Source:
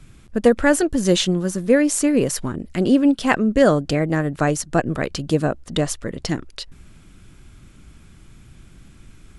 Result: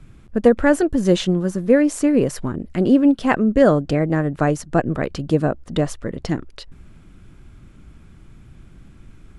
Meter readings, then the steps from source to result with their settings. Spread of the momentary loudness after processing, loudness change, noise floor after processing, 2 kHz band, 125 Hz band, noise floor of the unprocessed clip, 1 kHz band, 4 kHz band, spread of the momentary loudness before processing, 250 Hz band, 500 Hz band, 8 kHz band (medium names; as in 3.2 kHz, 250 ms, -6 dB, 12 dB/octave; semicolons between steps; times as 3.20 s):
11 LU, +1.0 dB, -46 dBFS, -2.0 dB, +1.5 dB, -47 dBFS, +0.5 dB, -5.5 dB, 11 LU, +1.5 dB, +1.0 dB, -8.5 dB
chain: treble shelf 2.6 kHz -11 dB; trim +1.5 dB